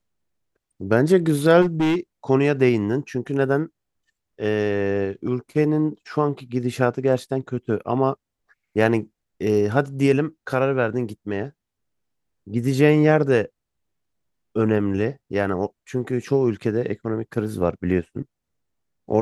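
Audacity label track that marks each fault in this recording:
1.610000	1.960000	clipped -16.5 dBFS

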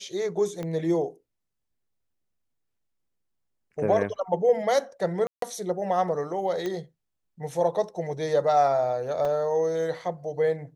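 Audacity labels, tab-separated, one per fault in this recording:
0.630000	0.630000	pop -21 dBFS
5.270000	5.420000	dropout 153 ms
6.660000	6.660000	pop -18 dBFS
9.250000	9.250000	dropout 3.7 ms

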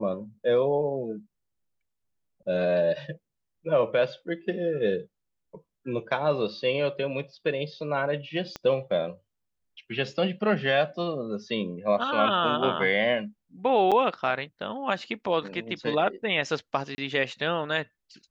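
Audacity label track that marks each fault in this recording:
8.560000	8.560000	pop -19 dBFS
13.910000	13.920000	dropout 6.7 ms
16.950000	16.980000	dropout 30 ms

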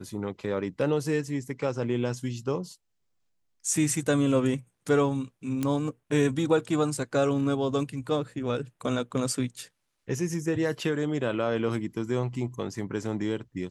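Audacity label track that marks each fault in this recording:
5.630000	5.630000	pop -16 dBFS

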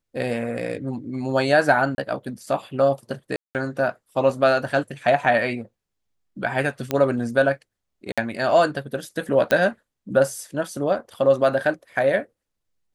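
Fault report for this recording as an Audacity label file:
1.950000	1.980000	dropout 30 ms
3.360000	3.550000	dropout 188 ms
6.910000	6.910000	pop -9 dBFS
8.120000	8.180000	dropout 56 ms
9.510000	9.510000	pop -7 dBFS

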